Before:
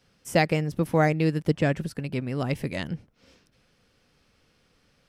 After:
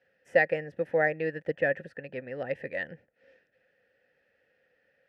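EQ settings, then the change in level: vowel filter e; low shelf 210 Hz +11.5 dB; band shelf 1200 Hz +11 dB; +2.0 dB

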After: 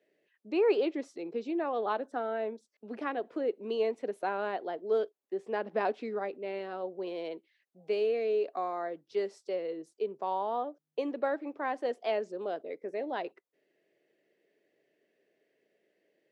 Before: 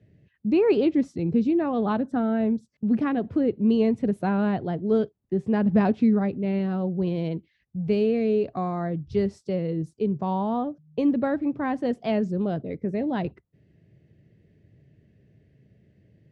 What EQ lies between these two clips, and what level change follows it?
HPF 400 Hz 24 dB/oct; -3.0 dB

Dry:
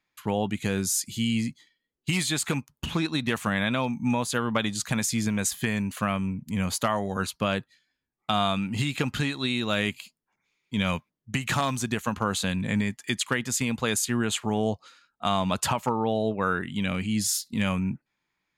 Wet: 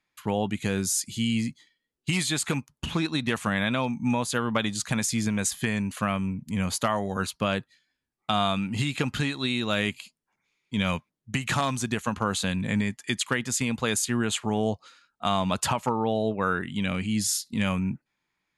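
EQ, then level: brick-wall FIR low-pass 12000 Hz; 0.0 dB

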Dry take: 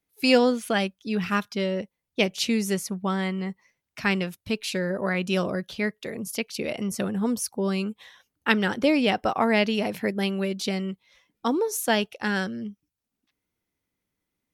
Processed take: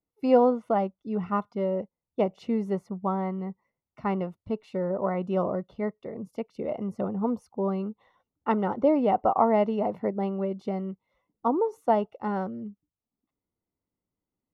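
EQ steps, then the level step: dynamic EQ 870 Hz, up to +8 dB, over -38 dBFS, Q 0.88; polynomial smoothing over 65 samples; -3.5 dB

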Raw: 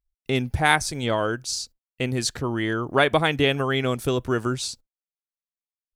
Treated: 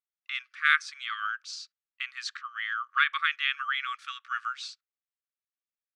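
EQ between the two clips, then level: brick-wall FIR high-pass 1100 Hz; LPF 2700 Hz 6 dB/oct; air absorption 120 m; +1.5 dB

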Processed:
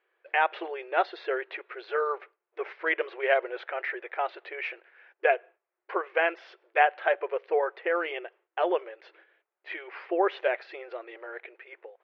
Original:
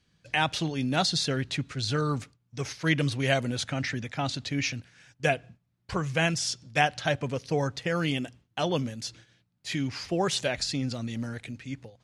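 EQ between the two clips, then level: brick-wall FIR high-pass 340 Hz; LPF 2300 Hz 24 dB/oct; air absorption 140 m; +4.0 dB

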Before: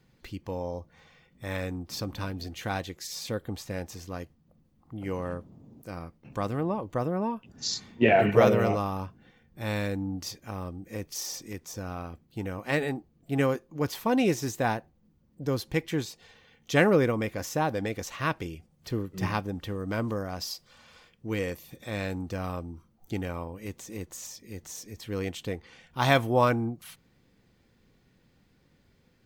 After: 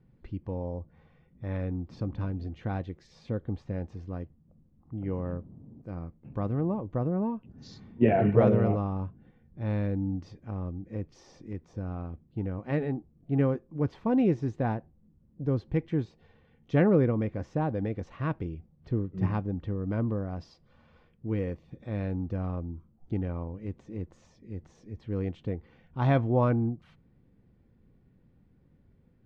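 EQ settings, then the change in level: tape spacing loss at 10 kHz 36 dB; low shelf 390 Hz +9.5 dB; -4.5 dB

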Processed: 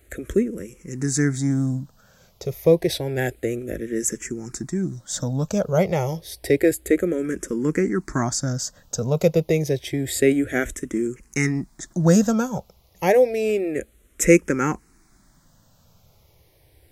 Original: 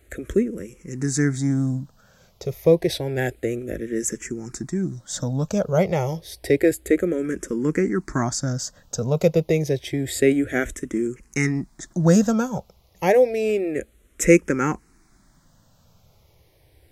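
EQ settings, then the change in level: high shelf 8800 Hz +5.5 dB; 0.0 dB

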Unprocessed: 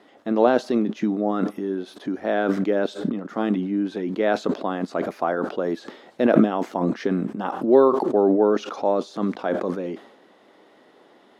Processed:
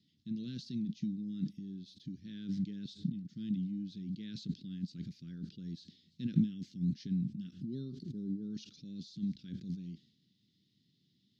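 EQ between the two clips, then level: dynamic EQ 1600 Hz, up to +6 dB, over -43 dBFS, Q 2.7; Chebyshev band-stop 150–4500 Hz, order 3; air absorption 210 m; +1.5 dB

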